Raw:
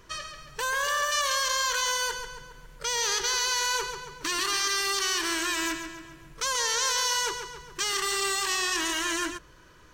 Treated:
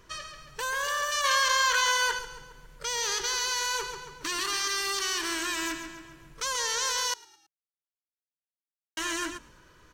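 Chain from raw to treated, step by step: 1.24–2.19 bell 1600 Hz +7.5 dB 2.7 oct; 7.14–8.97 mute; frequency-shifting echo 0.109 s, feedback 54%, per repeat -56 Hz, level -24 dB; gain -2.5 dB

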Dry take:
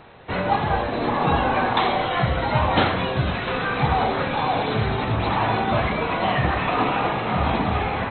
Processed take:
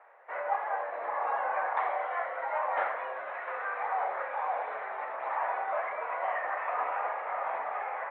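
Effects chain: Chebyshev band-pass 560–2000 Hz, order 3; gain -8 dB

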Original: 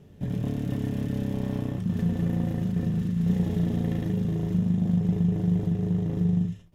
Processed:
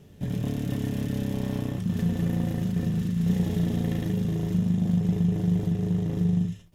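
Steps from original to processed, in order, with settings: high shelf 2500 Hz +7.5 dB

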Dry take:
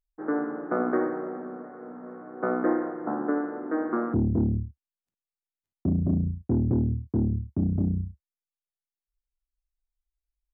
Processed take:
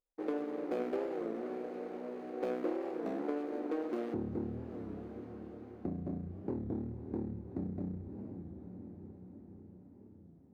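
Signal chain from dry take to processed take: median filter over 41 samples; low shelf 150 Hz -9 dB; diffused feedback echo 0.46 s, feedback 67%, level -15 dB; compressor 3:1, threshold -36 dBFS, peak gain reduction 10.5 dB; bell 530 Hz +9.5 dB 1.5 oct; notch 650 Hz, Q 12; resonator 180 Hz, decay 1.8 s; record warp 33 1/3 rpm, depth 160 cents; gain +3 dB

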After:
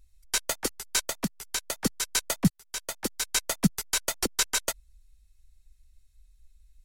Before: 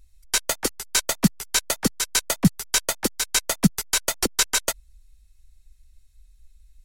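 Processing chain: 0.99–1.84 compressor 3:1, threshold -23 dBFS, peak gain reduction 9.5 dB; 2.5–3.21 fade in; gain -5 dB

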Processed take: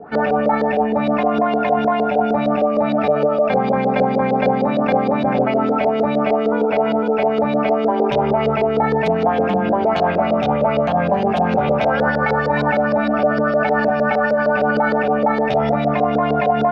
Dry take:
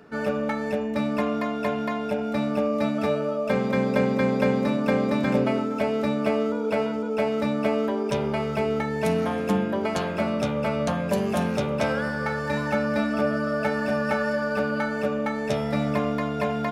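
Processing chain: bell 750 Hz +14.5 dB 0.25 oct; in parallel at -0.5 dB: negative-ratio compressor -26 dBFS, ratio -0.5; on the sum: LFO low-pass saw up 6.5 Hz 460–4400 Hz

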